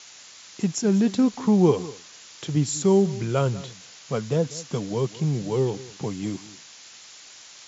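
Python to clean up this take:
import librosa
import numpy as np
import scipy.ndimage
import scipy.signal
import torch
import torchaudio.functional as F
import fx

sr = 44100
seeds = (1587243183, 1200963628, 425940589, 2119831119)

y = fx.noise_reduce(x, sr, print_start_s=0.0, print_end_s=0.5, reduce_db=21.0)
y = fx.fix_echo_inverse(y, sr, delay_ms=194, level_db=-18.5)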